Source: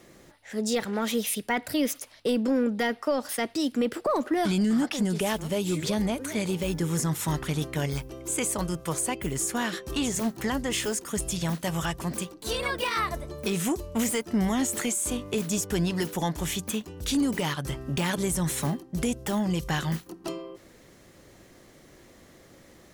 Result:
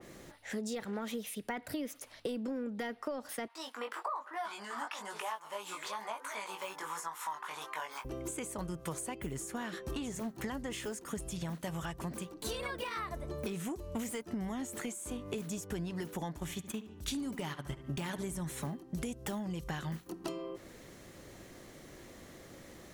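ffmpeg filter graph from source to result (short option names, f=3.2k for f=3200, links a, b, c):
-filter_complex "[0:a]asettb=1/sr,asplit=3[a][b][c];[a]atrim=end=3.484[d];[b]atrim=start=3.48:end=8.05,asetpts=PTS-STARTPTS,afade=t=in:d=0.004:c=qsin,afade=t=out:st=4.566:d=0.004:c=qsin,flanger=delay=18:depth=2.9:speed=1.1,highpass=f=1k:t=q:w=4.2[e];[c]atrim=start=8.046[f];[d][e]acrossfade=d=0.004:c1=hsin:c2=qsin[g];[g][f]acrossfade=d=0.004:c1=qsin:c2=hsin,asettb=1/sr,asplit=3[h][i][j];[h]atrim=end=16.384[k];[i]atrim=start=16.38:end=18.45,asetpts=PTS-STARTPTS,afade=t=in:d=0.004:c=qsin,afade=t=out:st=2.066:d=0.004:c=qsin,bandreject=f=490:w=7.5,agate=range=-10dB:threshold=-32dB:ratio=16:release=100:detection=peak,asplit=2[l][m];[m]adelay=72,lowpass=f=3.4k:p=1,volume=-14dB,asplit=2[n][o];[o]adelay=72,lowpass=f=3.4k:p=1,volume=0.36,asplit=2[p][q];[q]adelay=72,lowpass=f=3.4k:p=1,volume=0.36[r];[l][n][p][r]amix=inputs=4:normalize=0,atrim=end_sample=91287[s];[j]atrim=start=18.446[t];[k][s]acrossfade=d=0.004:c1=hsin:c2=qsin[u];[u][t]acrossfade=d=0.004:c1=qsin:c2=hsin,equalizer=f=5k:w=7.8:g=-2,acompressor=threshold=-36dB:ratio=10,adynamicequalizer=threshold=0.00158:dfrequency=2400:dqfactor=0.7:tfrequency=2400:tqfactor=0.7:attack=5:release=100:ratio=0.375:range=3:mode=cutabove:tftype=highshelf,volume=1dB"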